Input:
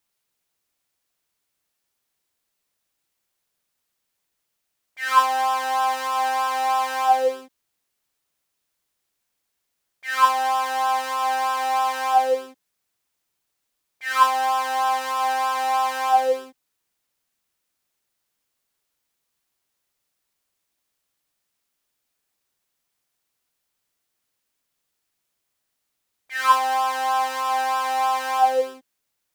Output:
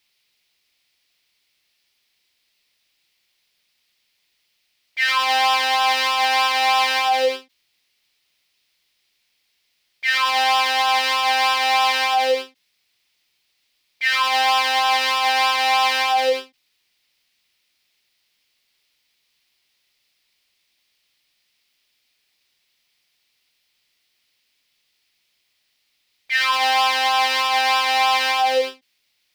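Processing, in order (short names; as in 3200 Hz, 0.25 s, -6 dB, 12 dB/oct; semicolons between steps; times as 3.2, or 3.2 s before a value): band shelf 3200 Hz +12.5 dB; limiter -12 dBFS, peak gain reduction 11 dB; ending taper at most 270 dB/s; gain +3 dB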